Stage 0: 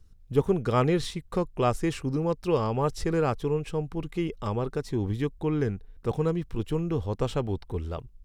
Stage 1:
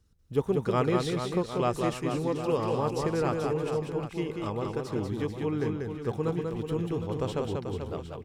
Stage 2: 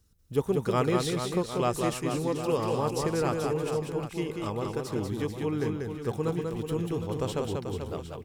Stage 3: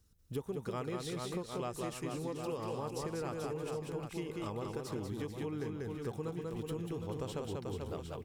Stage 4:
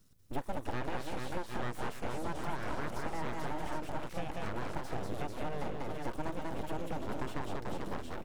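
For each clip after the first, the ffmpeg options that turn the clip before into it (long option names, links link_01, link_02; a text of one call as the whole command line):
ffmpeg -i in.wav -filter_complex "[0:a]highpass=frequency=110:poles=1,asplit=2[link_01][link_02];[link_02]aecho=0:1:190|437|758.1|1176|1718:0.631|0.398|0.251|0.158|0.1[link_03];[link_01][link_03]amix=inputs=2:normalize=0,volume=-3dB" out.wav
ffmpeg -i in.wav -af "highshelf=frequency=6700:gain=11.5" out.wav
ffmpeg -i in.wav -af "acompressor=threshold=-33dB:ratio=5,volume=-3dB" out.wav
ffmpeg -i in.wav -filter_complex "[0:a]aeval=exprs='abs(val(0))':channel_layout=same,acrossover=split=2600[link_01][link_02];[link_02]acompressor=threshold=-57dB:ratio=4:attack=1:release=60[link_03];[link_01][link_03]amix=inputs=2:normalize=0,volume=5dB" out.wav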